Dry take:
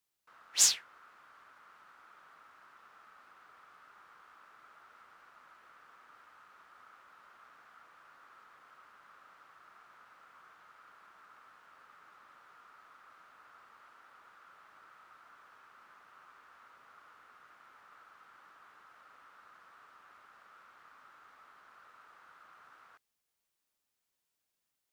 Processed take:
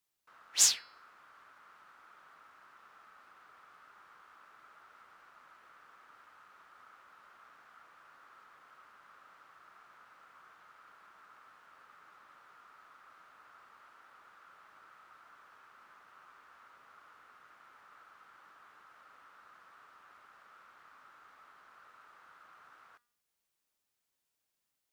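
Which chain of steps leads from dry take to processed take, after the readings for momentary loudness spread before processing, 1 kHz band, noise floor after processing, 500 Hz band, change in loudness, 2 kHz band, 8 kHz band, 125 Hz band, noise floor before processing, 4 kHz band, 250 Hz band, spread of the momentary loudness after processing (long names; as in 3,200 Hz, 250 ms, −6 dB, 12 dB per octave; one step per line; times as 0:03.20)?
13 LU, 0.0 dB, −85 dBFS, 0.0 dB, 0.0 dB, 0.0 dB, 0.0 dB, 0.0 dB, −85 dBFS, 0.0 dB, 0.0 dB, 13 LU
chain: hum removal 240.3 Hz, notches 22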